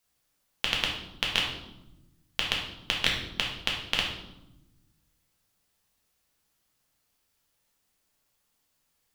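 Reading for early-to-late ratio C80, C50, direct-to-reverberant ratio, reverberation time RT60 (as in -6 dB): 7.5 dB, 4.0 dB, -2.0 dB, not exponential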